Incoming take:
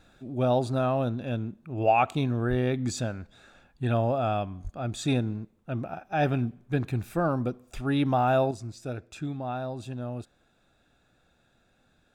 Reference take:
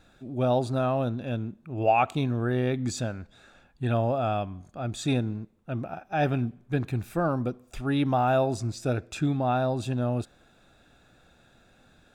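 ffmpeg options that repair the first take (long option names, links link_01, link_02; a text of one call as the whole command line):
ffmpeg -i in.wav -filter_complex "[0:a]asplit=3[link_01][link_02][link_03];[link_01]afade=type=out:start_time=2.49:duration=0.02[link_04];[link_02]highpass=frequency=140:width=0.5412,highpass=frequency=140:width=1.3066,afade=type=in:start_time=2.49:duration=0.02,afade=type=out:start_time=2.61:duration=0.02[link_05];[link_03]afade=type=in:start_time=2.61:duration=0.02[link_06];[link_04][link_05][link_06]amix=inputs=3:normalize=0,asplit=3[link_07][link_08][link_09];[link_07]afade=type=out:start_time=4.63:duration=0.02[link_10];[link_08]highpass=frequency=140:width=0.5412,highpass=frequency=140:width=1.3066,afade=type=in:start_time=4.63:duration=0.02,afade=type=out:start_time=4.75:duration=0.02[link_11];[link_09]afade=type=in:start_time=4.75:duration=0.02[link_12];[link_10][link_11][link_12]amix=inputs=3:normalize=0,asetnsamples=nb_out_samples=441:pad=0,asendcmd='8.51 volume volume 7.5dB',volume=0dB" out.wav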